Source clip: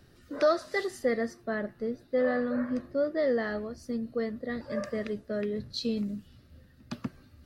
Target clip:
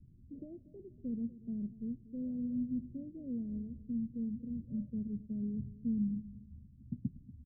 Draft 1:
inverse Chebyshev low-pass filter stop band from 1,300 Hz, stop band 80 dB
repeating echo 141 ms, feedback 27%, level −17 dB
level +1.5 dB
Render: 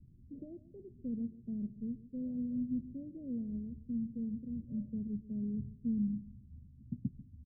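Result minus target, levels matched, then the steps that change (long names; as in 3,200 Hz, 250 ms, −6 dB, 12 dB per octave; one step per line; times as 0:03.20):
echo 97 ms early
change: repeating echo 238 ms, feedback 27%, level −17 dB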